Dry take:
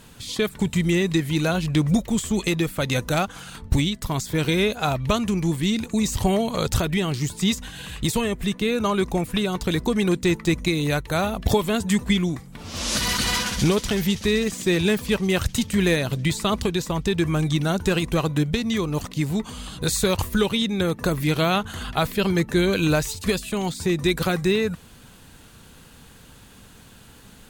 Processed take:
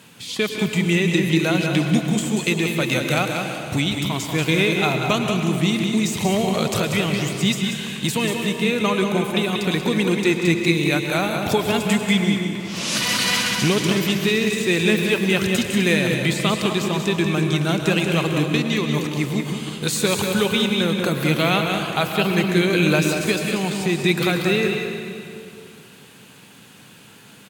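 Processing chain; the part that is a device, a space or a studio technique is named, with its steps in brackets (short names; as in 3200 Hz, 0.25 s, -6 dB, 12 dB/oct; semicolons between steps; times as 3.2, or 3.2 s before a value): PA in a hall (HPF 120 Hz 24 dB/oct; bell 2500 Hz +6 dB 0.72 oct; echo 0.187 s -6.5 dB; reverb RT60 2.4 s, pre-delay 0.1 s, DRR 5.5 dB)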